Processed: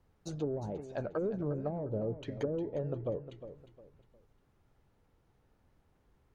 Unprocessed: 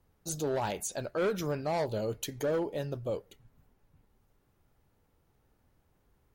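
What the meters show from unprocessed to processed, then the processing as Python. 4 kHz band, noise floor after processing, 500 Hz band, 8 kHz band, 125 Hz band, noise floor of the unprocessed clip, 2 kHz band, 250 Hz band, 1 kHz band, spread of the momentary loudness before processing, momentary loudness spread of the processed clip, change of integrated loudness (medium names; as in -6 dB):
-13.0 dB, -71 dBFS, -3.5 dB, under -15 dB, +0.5 dB, -72 dBFS, -12.0 dB, -0.5 dB, -10.5 dB, 5 LU, 12 LU, -3.5 dB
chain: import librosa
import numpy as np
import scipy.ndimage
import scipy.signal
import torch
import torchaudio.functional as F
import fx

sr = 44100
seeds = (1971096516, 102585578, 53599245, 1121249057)

p1 = fx.env_lowpass_down(x, sr, base_hz=360.0, full_db=-28.0)
p2 = fx.high_shelf(p1, sr, hz=8300.0, db=-11.5)
y = p2 + fx.echo_feedback(p2, sr, ms=356, feedback_pct=31, wet_db=-12, dry=0)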